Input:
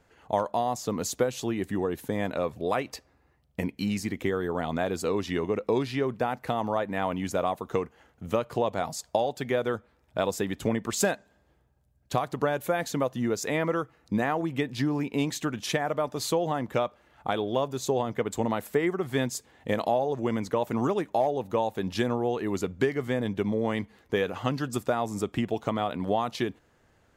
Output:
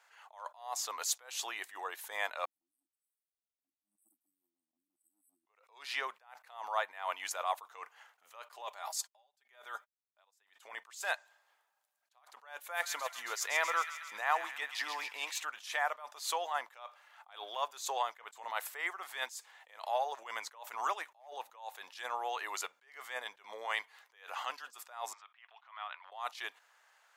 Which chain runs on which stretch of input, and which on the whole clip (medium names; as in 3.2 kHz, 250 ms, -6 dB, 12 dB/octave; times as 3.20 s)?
2.45–5.47 s: compression 2:1, threshold -54 dBFS + brick-wall FIR band-stop 340–7800 Hz + three bands expanded up and down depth 100%
8.52–10.20 s: gate -53 dBFS, range -55 dB + treble shelf 9.2 kHz +5.5 dB + comb 5 ms, depth 48%
12.60–15.42 s: de-esser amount 65% + feedback echo behind a high-pass 134 ms, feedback 68%, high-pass 2 kHz, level -8 dB
25.13–26.12 s: compression 2.5:1, threshold -33 dBFS + Butterworth band-pass 1.8 kHz, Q 0.72 + distance through air 90 m
whole clip: high-pass 840 Hz 24 dB/octave; attacks held to a fixed rise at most 130 dB/s; trim +2.5 dB